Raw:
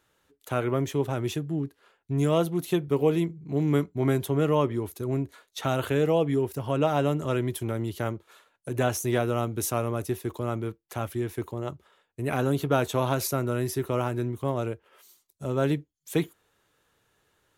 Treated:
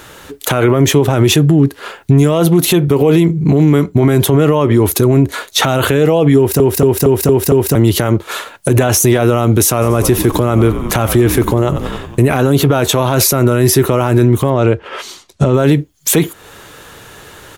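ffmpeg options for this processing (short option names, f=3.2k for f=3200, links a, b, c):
-filter_complex "[0:a]asplit=3[a][b][c];[a]afade=t=out:st=9.81:d=0.02[d];[b]asplit=7[e][f][g][h][i][j][k];[f]adelay=92,afreqshift=-53,volume=-18dB[l];[g]adelay=184,afreqshift=-106,volume=-22dB[m];[h]adelay=276,afreqshift=-159,volume=-26dB[n];[i]adelay=368,afreqshift=-212,volume=-30dB[o];[j]adelay=460,afreqshift=-265,volume=-34.1dB[p];[k]adelay=552,afreqshift=-318,volume=-38.1dB[q];[e][l][m][n][o][p][q]amix=inputs=7:normalize=0,afade=t=in:st=9.81:d=0.02,afade=t=out:st=12.35:d=0.02[r];[c]afade=t=in:st=12.35:d=0.02[s];[d][r][s]amix=inputs=3:normalize=0,asettb=1/sr,asplit=3[t][u][v];[t]atrim=end=14.504[w];[u]atrim=start=14.5:end=15.54,asetpts=PTS-STARTPTS,afade=t=in:d=0.004:c=qsin,afade=t=out:st=1.036:d=0.004:c=qsin,lowpass=4.9k[x];[v]atrim=start=15.536[y];[w][x]acrossfade=d=0.004:c1=hsin:c2=qsin[z];[z][y]acrossfade=d=0.004:c1=qsin:c2=hsin,asplit=7[aa][ab][ac][ad][ae][af][ag];[aa]atrim=end=6.602[ah];[ab]atrim=start=6.368:end=6.602[ai];[ac]atrim=start=6.368:end=6.602[aj];[ad]atrim=start=6.368:end=6.602[ak];[ae]atrim=start=6.368:end=6.602[al];[af]atrim=start=6.368:end=6.602[am];[ag]atrim=start=7.748[an];[ah][ai]acrossfade=d=0.004:c1=hsin:c2=hsin[ao];[ao][aj]acrossfade=d=0.004:c1=hsin:c2=hsin[ap];[ap][ak]acrossfade=d=0.004:c1=hsin:c2=hsin[aq];[aq][al]acrossfade=d=0.004:c1=hsin:c2=hsin[ar];[ar][am]acrossfade=d=0.004:c1=hsin:c2=hsin[as];[as][an]acrossfade=d=0.004:c1=hsin:c2=hsin,acompressor=threshold=-38dB:ratio=2.5,alimiter=level_in=34dB:limit=-1dB:release=50:level=0:latency=1,volume=-1dB"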